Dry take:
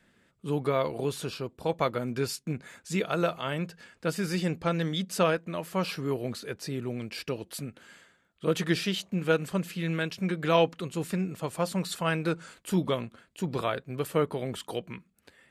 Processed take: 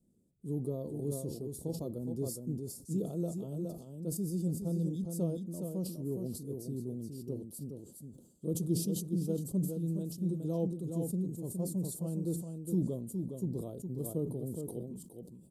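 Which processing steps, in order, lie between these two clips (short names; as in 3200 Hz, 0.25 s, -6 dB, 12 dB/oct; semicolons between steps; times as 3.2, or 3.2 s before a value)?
Chebyshev band-stop 310–9800 Hz, order 2; echo 0.415 s -6 dB; on a send at -20 dB: reverb RT60 0.40 s, pre-delay 6 ms; on the sum: sustainer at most 80 dB/s; gain -4.5 dB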